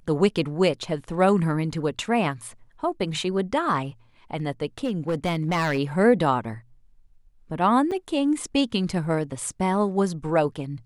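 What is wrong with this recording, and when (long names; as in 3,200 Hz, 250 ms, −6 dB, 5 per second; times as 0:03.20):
0:04.84–0:05.79: clipping −19.5 dBFS
0:07.91–0:07.92: drop-out 6.1 ms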